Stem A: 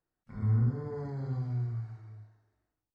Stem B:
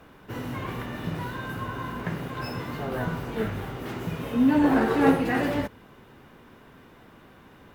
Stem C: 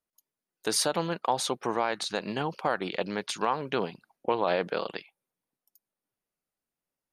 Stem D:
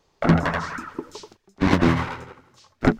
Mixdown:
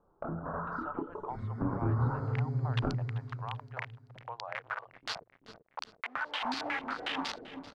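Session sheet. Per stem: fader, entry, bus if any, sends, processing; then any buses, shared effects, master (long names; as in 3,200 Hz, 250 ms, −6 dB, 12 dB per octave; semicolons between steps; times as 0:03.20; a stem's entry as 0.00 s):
−5.5 dB, 1.00 s, bus A, no send, echo send −8.5 dB, comb filter 7.5 ms, depth 76%
−13.0 dB, 1.70 s, bus B, no send, echo send −21 dB, bit reduction 4 bits; low-pass on a step sequencer 11 Hz 300–4,600 Hz
−17.5 dB, 0.00 s, bus B, no send, no echo send, reverb reduction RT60 0.68 s; Chebyshev low-pass filter 1,300 Hz, order 2; spectral tilt −4.5 dB per octave
+0.5 dB, 0.00 s, bus A, no send, no echo send, elliptic low-pass filter 1,400 Hz, stop band 40 dB; downward compressor 2.5 to 1, threshold −25 dBFS, peak gain reduction 9 dB
bus A: 0.0 dB, multi-voice chorus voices 4, 0.35 Hz, delay 29 ms, depth 4.6 ms; downward compressor 2.5 to 1, threshold −42 dBFS, peak gain reduction 14.5 dB
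bus B: 0.0 dB, high-pass filter 750 Hz 24 dB per octave; downward compressor, threshold −38 dBFS, peak gain reduction 9 dB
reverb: not used
echo: repeating echo 387 ms, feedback 45%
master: automatic gain control gain up to 6 dB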